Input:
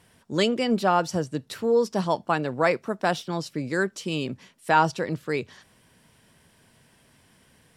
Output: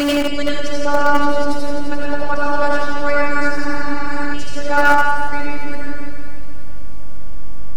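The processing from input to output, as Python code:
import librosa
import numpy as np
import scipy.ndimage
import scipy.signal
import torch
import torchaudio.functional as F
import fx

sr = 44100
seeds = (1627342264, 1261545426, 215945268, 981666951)

p1 = fx.block_reorder(x, sr, ms=213.0, group=3)
p2 = fx.dmg_noise_colour(p1, sr, seeds[0], colour='brown', level_db=-39.0)
p3 = p2 + fx.echo_wet_highpass(p2, sr, ms=172, feedback_pct=72, hz=2700.0, wet_db=-7.0, dry=0)
p4 = fx.robotise(p3, sr, hz=289.0)
p5 = fx.rev_freeverb(p4, sr, rt60_s=2.2, hf_ratio=0.6, predelay_ms=45, drr_db=-6.5)
p6 = fx.spec_repair(p5, sr, seeds[1], start_s=3.58, length_s=0.73, low_hz=650.0, high_hz=4600.0, source='before')
p7 = fx.schmitt(p6, sr, flips_db=-32.0)
p8 = p6 + (p7 * 10.0 ** (-11.5 / 20.0))
p9 = fx.peak_eq(p8, sr, hz=1400.0, db=6.0, octaves=0.25)
p10 = fx.add_hum(p9, sr, base_hz=50, snr_db=32)
p11 = fx.peak_eq(p10, sr, hz=3600.0, db=-5.5, octaves=0.32)
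p12 = fx.doppler_dist(p11, sr, depth_ms=0.12)
y = p12 * 10.0 ** (1.5 / 20.0)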